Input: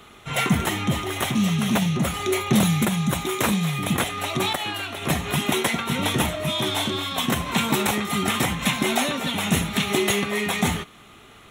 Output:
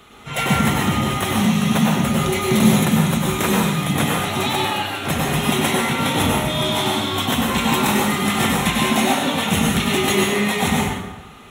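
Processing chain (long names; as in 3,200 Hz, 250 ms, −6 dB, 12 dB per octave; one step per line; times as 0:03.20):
dense smooth reverb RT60 1.1 s, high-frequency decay 0.6×, pre-delay 85 ms, DRR −3 dB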